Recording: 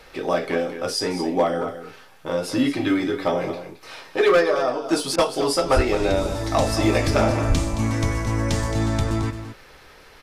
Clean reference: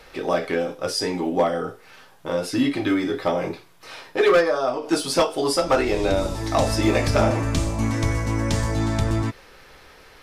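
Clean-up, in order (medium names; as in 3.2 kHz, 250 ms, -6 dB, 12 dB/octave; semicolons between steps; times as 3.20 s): clip repair -9 dBFS; 5.75–5.87 s: high-pass 140 Hz 24 dB/octave; 7.48–7.60 s: high-pass 140 Hz 24 dB/octave; interpolate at 5.16 s, 21 ms; inverse comb 220 ms -11 dB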